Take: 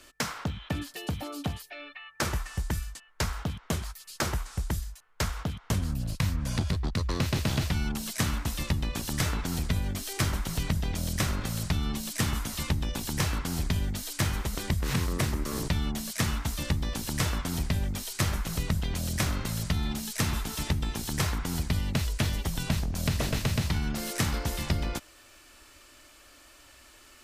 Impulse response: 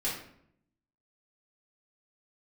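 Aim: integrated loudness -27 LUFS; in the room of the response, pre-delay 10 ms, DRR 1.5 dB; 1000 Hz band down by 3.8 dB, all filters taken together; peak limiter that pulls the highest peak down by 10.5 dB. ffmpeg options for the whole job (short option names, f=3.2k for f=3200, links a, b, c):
-filter_complex "[0:a]equalizer=f=1k:t=o:g=-5,alimiter=level_in=1dB:limit=-24dB:level=0:latency=1,volume=-1dB,asplit=2[a][b];[1:a]atrim=start_sample=2205,adelay=10[c];[b][c]afir=irnorm=-1:irlink=0,volume=-7.5dB[d];[a][d]amix=inputs=2:normalize=0,volume=6dB"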